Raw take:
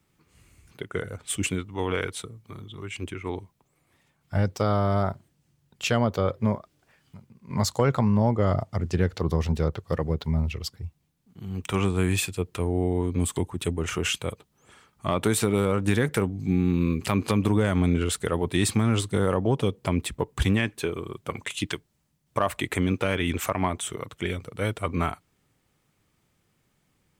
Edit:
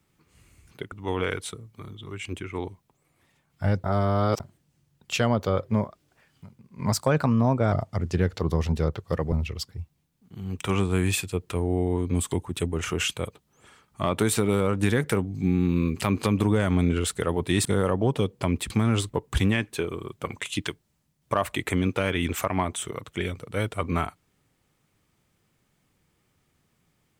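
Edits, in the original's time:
0.92–1.63 s: delete
4.55–5.11 s: reverse
7.63–8.52 s: speed 111%
10.12–10.37 s: delete
18.70–19.09 s: move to 20.14 s

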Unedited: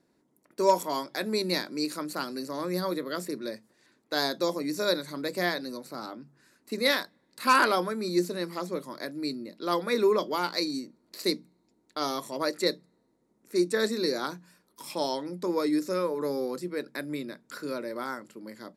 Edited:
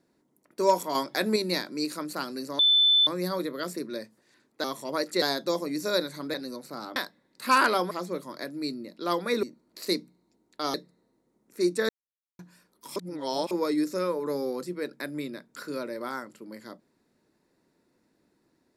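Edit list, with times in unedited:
0.95–1.36 s: gain +4.5 dB
2.59 s: add tone 3.52 kHz -17 dBFS 0.48 s
5.28–5.55 s: delete
6.17–6.94 s: delete
7.89–8.52 s: delete
10.04–10.80 s: delete
12.11–12.69 s: move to 4.16 s
13.84–14.34 s: mute
14.91–15.46 s: reverse

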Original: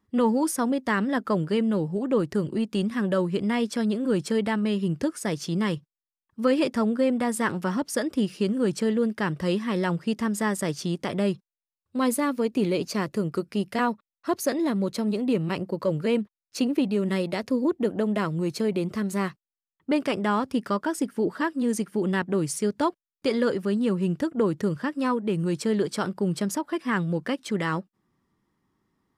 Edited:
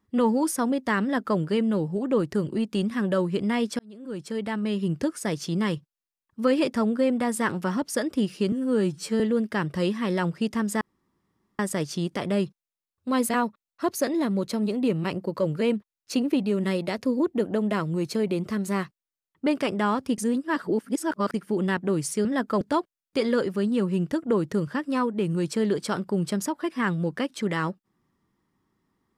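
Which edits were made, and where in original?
1.02–1.38 s: copy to 22.70 s
3.79–4.90 s: fade in
8.52–8.86 s: stretch 2×
10.47 s: insert room tone 0.78 s
12.17–13.74 s: delete
20.63–21.79 s: reverse

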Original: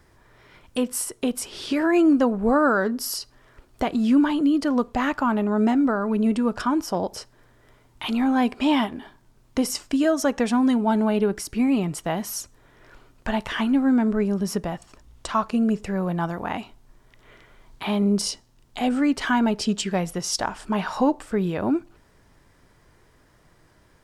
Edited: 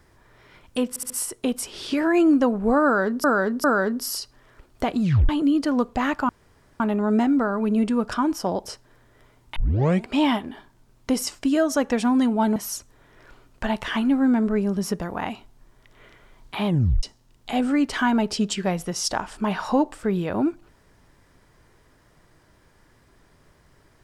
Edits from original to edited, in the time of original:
0.89 s: stutter 0.07 s, 4 plays
2.63–3.03 s: loop, 3 plays
4.01 s: tape stop 0.27 s
5.28 s: insert room tone 0.51 s
8.04 s: tape start 0.51 s
11.04–12.20 s: delete
14.66–16.30 s: delete
17.95 s: tape stop 0.36 s

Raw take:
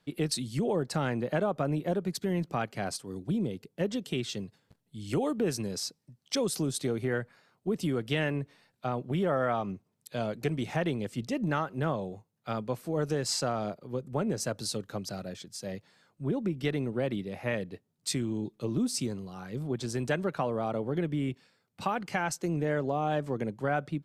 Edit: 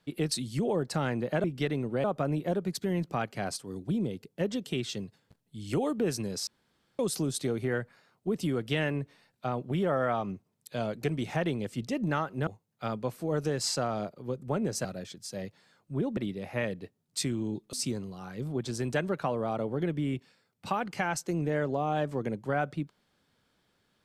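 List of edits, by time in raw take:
5.87–6.39 s: room tone
11.87–12.12 s: delete
14.50–15.15 s: delete
16.47–17.07 s: move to 1.44 s
18.63–18.88 s: delete

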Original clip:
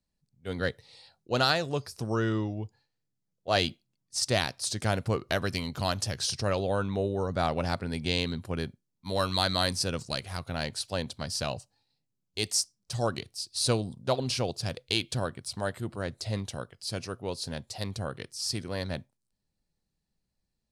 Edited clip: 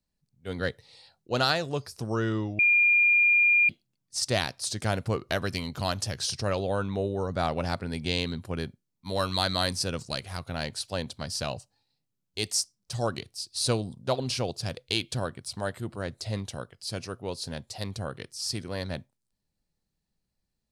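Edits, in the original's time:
2.59–3.69 s: bleep 2.41 kHz -17.5 dBFS

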